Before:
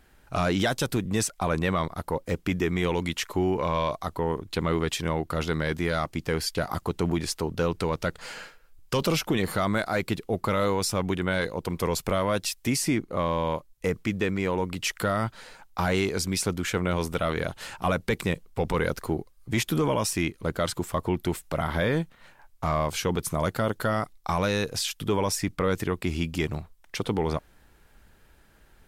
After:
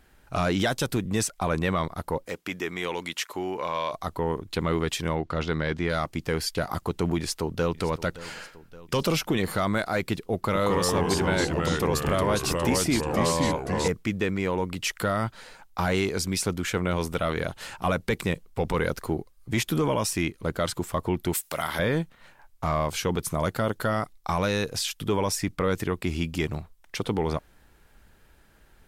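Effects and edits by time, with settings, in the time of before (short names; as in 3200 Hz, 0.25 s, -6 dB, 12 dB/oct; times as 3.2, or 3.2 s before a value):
2.27–3.94 HPF 610 Hz 6 dB/oct
5.15–5.9 LPF 5100 Hz
7.17–7.75 echo throw 0.57 s, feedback 60%, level -17 dB
10.34–13.88 echoes that change speed 0.209 s, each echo -2 st, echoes 3
21.33–21.79 tilt +3.5 dB/oct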